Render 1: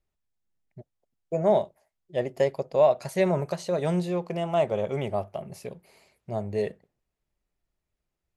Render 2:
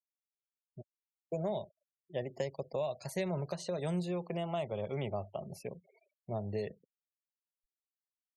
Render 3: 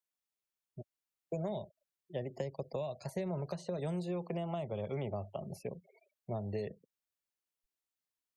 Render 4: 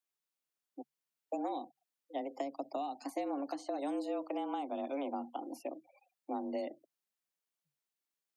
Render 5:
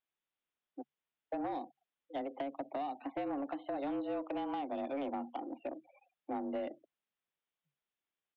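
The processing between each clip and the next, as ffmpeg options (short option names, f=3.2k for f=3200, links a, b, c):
-filter_complex "[0:a]acrossover=split=140|3000[a][b][c];[b]acompressor=threshold=-30dB:ratio=5[d];[a][d][c]amix=inputs=3:normalize=0,afftfilt=real='re*gte(hypot(re,im),0.00398)':imag='im*gte(hypot(re,im),0.00398)':win_size=1024:overlap=0.75,volume=-4dB"
-filter_complex "[0:a]acrossover=split=340|1300[a][b][c];[a]acompressor=threshold=-39dB:ratio=4[d];[b]acompressor=threshold=-41dB:ratio=4[e];[c]acompressor=threshold=-57dB:ratio=4[f];[d][e][f]amix=inputs=3:normalize=0,volume=2dB"
-af "afreqshift=140"
-af "aresample=8000,aresample=44100,asoftclip=type=tanh:threshold=-31.5dB,volume=1.5dB"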